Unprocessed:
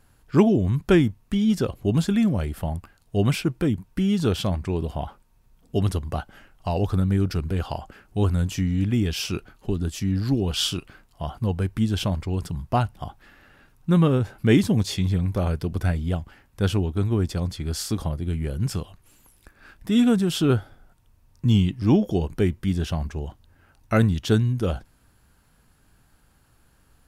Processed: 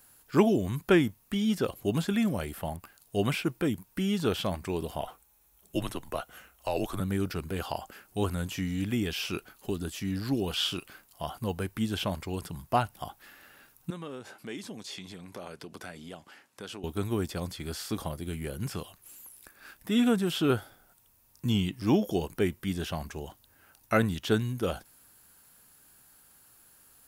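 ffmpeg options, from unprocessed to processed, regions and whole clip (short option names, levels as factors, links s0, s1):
-filter_complex "[0:a]asettb=1/sr,asplit=3[s0][s1][s2];[s0]atrim=end=5.014[s3];[s1]atrim=start=5.01:end=7,asetpts=PTS-STARTPTS,afade=t=in:d=0.004:c=qsin,afade=t=out:st=1.986:d=0.004:c=qsin,bandreject=f=4900:w=8.4,afreqshift=-77[s4];[s2]atrim=start=6.996[s5];[s3][s4]acrossfade=d=0.004:c1=hsin:c2=qsin[s6];[s6][s5]acrossfade=d=0.004:c1=qsin:c2=hsin,asettb=1/sr,asplit=3[s7][s8][s9];[s7]atrim=end=13.904[s10];[s8]atrim=start=13.9:end=16.84,asetpts=PTS-STARTPTS,afade=t=in:d=0.004:c=qsin,afade=t=out:st=2.936:d=0.004:c=qsin,highpass=200,lowpass=7700,acompressor=threshold=0.0158:ratio=3:attack=3.2:release=140:knee=1:detection=peak[s11];[s9]atrim=start=16.836[s12];[s10][s11]acrossfade=d=0.004:c1=hsin:c2=qsin[s13];[s13][s12]acrossfade=d=0.004:c1=qsin:c2=hsin,aemphasis=mode=production:type=bsi,acrossover=split=3200[s14][s15];[s15]acompressor=threshold=0.00794:ratio=4:attack=1:release=60[s16];[s14][s16]amix=inputs=2:normalize=0,volume=0.841"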